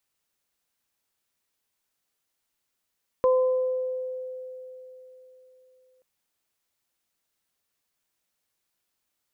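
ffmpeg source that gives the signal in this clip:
ffmpeg -f lavfi -i "aevalsrc='0.15*pow(10,-3*t/3.73)*sin(2*PI*512*t)+0.0531*pow(10,-3*t/1.09)*sin(2*PI*1024*t)':duration=2.78:sample_rate=44100" out.wav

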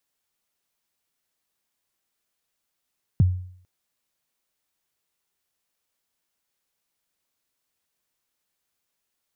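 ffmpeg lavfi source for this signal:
ffmpeg -f lavfi -i "aevalsrc='0.282*pow(10,-3*t/0.59)*sin(2*PI*(180*0.02/log(91/180)*(exp(log(91/180)*min(t,0.02)/0.02)-1)+91*max(t-0.02,0)))':duration=0.45:sample_rate=44100" out.wav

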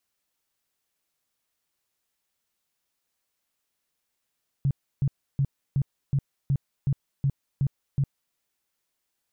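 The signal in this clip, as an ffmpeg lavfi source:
ffmpeg -f lavfi -i "aevalsrc='0.106*sin(2*PI*138*mod(t,0.37))*lt(mod(t,0.37),8/138)':duration=3.7:sample_rate=44100" out.wav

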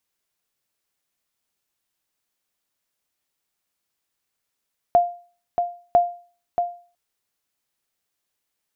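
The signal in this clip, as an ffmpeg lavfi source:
ffmpeg -f lavfi -i "aevalsrc='0.398*(sin(2*PI*700*mod(t,1))*exp(-6.91*mod(t,1)/0.4)+0.473*sin(2*PI*700*max(mod(t,1)-0.63,0))*exp(-6.91*max(mod(t,1)-0.63,0)/0.4))':duration=2:sample_rate=44100" out.wav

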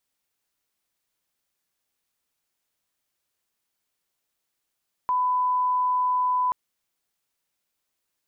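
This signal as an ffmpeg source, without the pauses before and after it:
ffmpeg -f lavfi -i "sine=frequency=1000:duration=1.43:sample_rate=44100,volume=-1.94dB" out.wav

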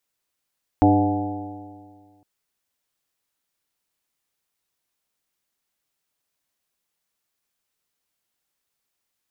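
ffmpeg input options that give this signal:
ffmpeg -f lavfi -i "aevalsrc='0.126*pow(10,-3*t/1.86)*sin(2*PI*98.04*t)+0.0355*pow(10,-3*t/1.86)*sin(2*PI*196.93*t)+0.224*pow(10,-3*t/1.86)*sin(2*PI*297.51*t)+0.0422*pow(10,-3*t/1.86)*sin(2*PI*400.58*t)+0.0531*pow(10,-3*t/1.86)*sin(2*PI*506.93*t)+0.0501*pow(10,-3*t/1.86)*sin(2*PI*617.3*t)+0.133*pow(10,-3*t/1.86)*sin(2*PI*732.37*t)+0.0631*pow(10,-3*t/1.86)*sin(2*PI*852.79*t)':duration=1.41:sample_rate=44100" out.wav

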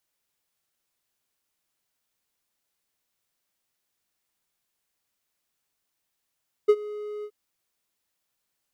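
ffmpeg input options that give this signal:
ffmpeg -f lavfi -i "aevalsrc='0.335*(1-4*abs(mod(419*t+0.25,1)-0.5))':duration=0.624:sample_rate=44100,afade=type=in:duration=0.016,afade=type=out:start_time=0.016:duration=0.054:silence=0.0944,afade=type=out:start_time=0.56:duration=0.064" out.wav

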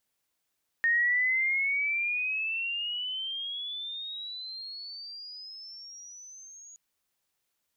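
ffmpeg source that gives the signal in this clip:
ffmpeg -f lavfi -i "aevalsrc='pow(10,(-21.5-25*t/5.92)/20)*sin(2*PI*1840*5.92/(22.5*log(2)/12)*(exp(22.5*log(2)/12*t/5.92)-1))':duration=5.92:sample_rate=44100" out.wav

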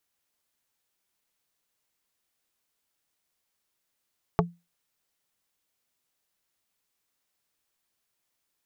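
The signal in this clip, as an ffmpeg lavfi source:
ffmpeg -f lavfi -i "aevalsrc='0.126*pow(10,-3*t/0.25)*sin(2*PI*172*t)+0.126*pow(10,-3*t/0.083)*sin(2*PI*430*t)+0.126*pow(10,-3*t/0.047)*sin(2*PI*688*t)+0.126*pow(10,-3*t/0.036)*sin(2*PI*860*t)+0.126*pow(10,-3*t/0.026)*sin(2*PI*1118*t)':duration=0.45:sample_rate=44100" out.wav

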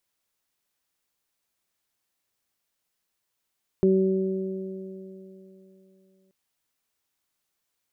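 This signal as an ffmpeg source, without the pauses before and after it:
ffmpeg -f lavfi -i "aevalsrc='0.1*pow(10,-3*t/3.32)*sin(2*PI*190*t)+0.141*pow(10,-3*t/2.98)*sin(2*PI*380*t)+0.0178*pow(10,-3*t/4.05)*sin(2*PI*570*t)':duration=2.48:sample_rate=44100" out.wav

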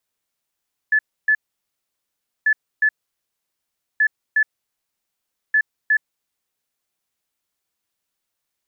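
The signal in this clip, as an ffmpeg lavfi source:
ffmpeg -f lavfi -i "aevalsrc='0.237*sin(2*PI*1730*t)*clip(min(mod(mod(t,1.54),0.36),0.07-mod(mod(t,1.54),0.36))/0.005,0,1)*lt(mod(t,1.54),0.72)':duration=6.16:sample_rate=44100" out.wav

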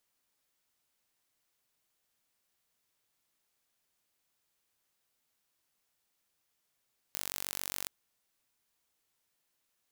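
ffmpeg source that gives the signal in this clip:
ffmpeg -f lavfi -i "aevalsrc='0.335*eq(mod(n,932),0)':duration=0.73:sample_rate=44100" out.wav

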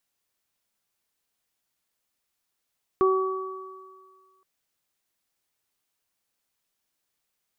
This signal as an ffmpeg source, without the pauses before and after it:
ffmpeg -f lavfi -i "aevalsrc='0.141*pow(10,-3*t/1.61)*sin(2*PI*379*t)+0.0188*pow(10,-3*t/1.33)*sin(2*PI*758*t)+0.0841*pow(10,-3*t/2.02)*sin(2*PI*1137*t)':duration=1.42:sample_rate=44100" out.wav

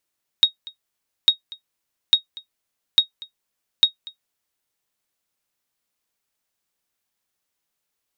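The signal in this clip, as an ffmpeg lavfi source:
ffmpeg -f lavfi -i "aevalsrc='0.631*(sin(2*PI*3760*mod(t,0.85))*exp(-6.91*mod(t,0.85)/0.11)+0.075*sin(2*PI*3760*max(mod(t,0.85)-0.24,0))*exp(-6.91*max(mod(t,0.85)-0.24,0)/0.11))':duration=4.25:sample_rate=44100" out.wav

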